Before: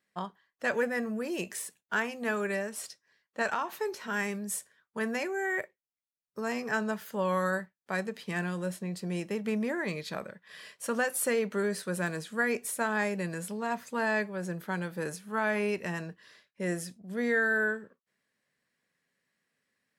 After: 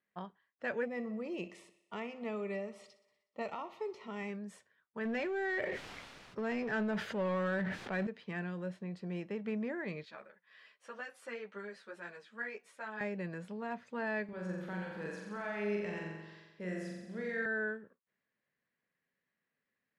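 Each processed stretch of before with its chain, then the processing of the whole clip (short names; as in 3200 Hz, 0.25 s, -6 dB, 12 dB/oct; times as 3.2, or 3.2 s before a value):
0.85–4.3 Butterworth band-stop 1600 Hz, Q 2.6 + thinning echo 61 ms, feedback 65%, high-pass 150 Hz, level -16.5 dB
5.05–8.07 power-law curve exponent 0.7 + sustainer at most 22 dB/s
10.05–13.01 HPF 810 Hz 6 dB/oct + ensemble effect
14.24–17.46 compressor 1.5:1, threshold -40 dBFS + high shelf 3300 Hz +7.5 dB + flutter echo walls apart 7.5 m, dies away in 1.1 s
whole clip: LPF 2900 Hz 12 dB/oct; dynamic EQ 1100 Hz, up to -5 dB, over -43 dBFS, Q 1.7; gain -6 dB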